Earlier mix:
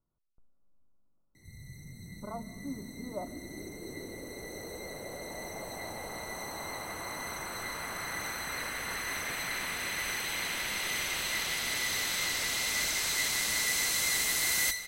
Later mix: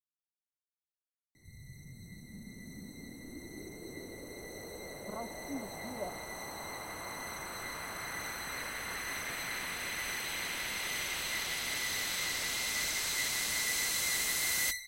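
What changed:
speech: entry +2.85 s
reverb: off

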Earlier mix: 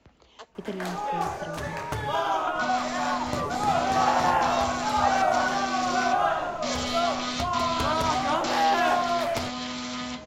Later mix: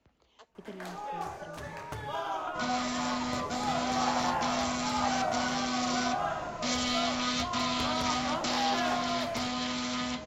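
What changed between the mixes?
speech −10.5 dB
first sound −8.5 dB

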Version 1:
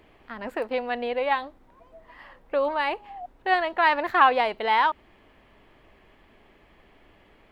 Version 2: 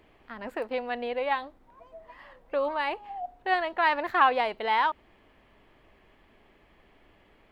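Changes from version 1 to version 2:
speech −3.5 dB
reverb: on

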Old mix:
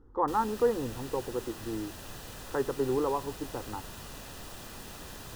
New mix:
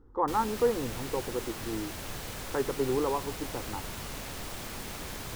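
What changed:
background +5.0 dB
master: remove Butterworth band-reject 2,200 Hz, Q 7.8

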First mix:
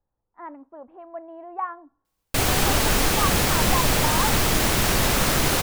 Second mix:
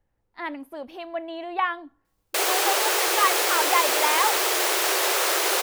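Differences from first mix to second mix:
speech: remove transistor ladder low-pass 1,400 Hz, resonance 35%
background: add linear-phase brick-wall high-pass 330 Hz

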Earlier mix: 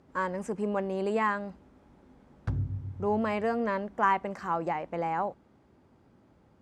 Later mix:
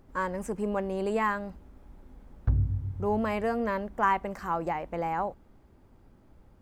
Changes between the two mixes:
background: add low-pass filter 1,200 Hz 6 dB per octave
master: remove band-pass filter 110–7,600 Hz

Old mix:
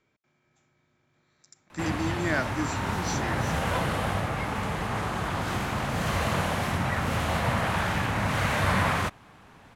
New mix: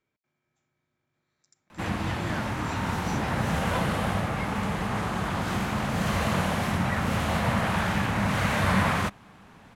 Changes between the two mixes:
speech −9.5 dB
background: add parametric band 200 Hz +6.5 dB 0.4 octaves

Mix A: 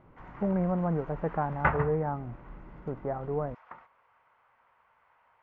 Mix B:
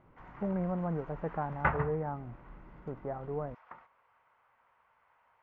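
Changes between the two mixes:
speech −5.0 dB
background −3.0 dB

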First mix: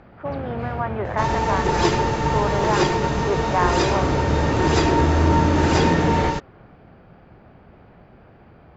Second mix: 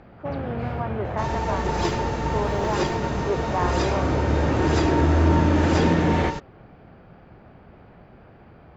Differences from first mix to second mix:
speech: add parametric band 1,900 Hz −9 dB 2.6 octaves
second sound −6.0 dB

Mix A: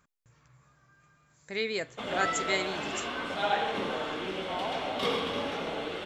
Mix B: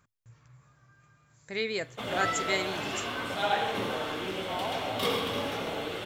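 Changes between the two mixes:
background: remove high-frequency loss of the air 65 metres
master: add parametric band 110 Hz +13.5 dB 0.32 octaves

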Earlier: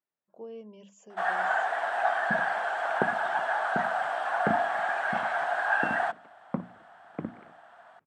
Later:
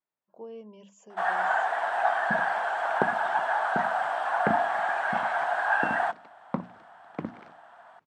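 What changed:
second sound: remove high-frequency loss of the air 470 metres
master: add parametric band 950 Hz +5 dB 0.44 octaves

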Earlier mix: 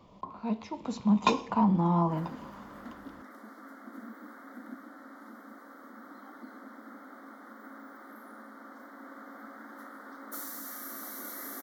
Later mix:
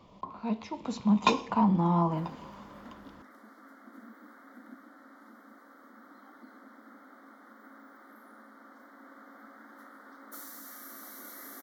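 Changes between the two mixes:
background −5.5 dB
master: add parametric band 3,000 Hz +2.5 dB 2.1 octaves

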